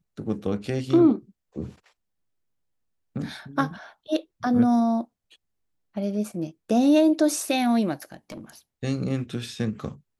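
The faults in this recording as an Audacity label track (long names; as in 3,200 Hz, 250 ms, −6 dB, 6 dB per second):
8.020000	8.500000	clipping −32 dBFS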